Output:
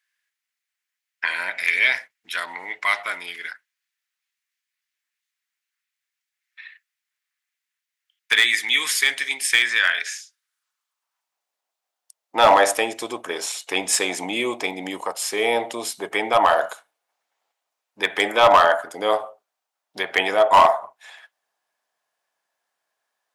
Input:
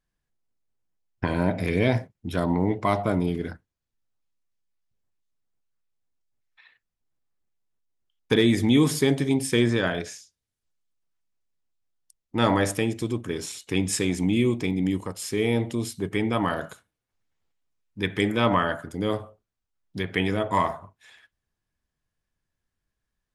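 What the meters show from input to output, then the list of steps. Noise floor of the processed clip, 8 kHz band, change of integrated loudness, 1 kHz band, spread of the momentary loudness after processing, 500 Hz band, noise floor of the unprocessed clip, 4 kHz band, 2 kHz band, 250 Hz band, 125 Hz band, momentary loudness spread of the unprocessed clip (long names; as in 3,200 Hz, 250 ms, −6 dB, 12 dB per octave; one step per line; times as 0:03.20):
−85 dBFS, +8.0 dB, +5.0 dB, +10.0 dB, 15 LU, +4.0 dB, −84 dBFS, +9.0 dB, +11.0 dB, −11.0 dB, −20.5 dB, 11 LU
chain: high-pass filter sweep 1,900 Hz → 710 Hz, 0:09.99–0:11.51
gain into a clipping stage and back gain 14.5 dB
level +7.5 dB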